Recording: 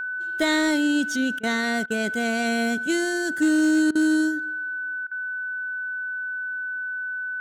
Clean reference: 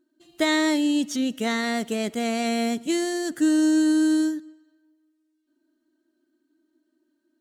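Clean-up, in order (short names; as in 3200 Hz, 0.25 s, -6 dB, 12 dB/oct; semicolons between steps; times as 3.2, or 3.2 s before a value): clip repair -14 dBFS; notch 1500 Hz, Q 30; interpolate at 1.39/1.86/3.91/5.07, 42 ms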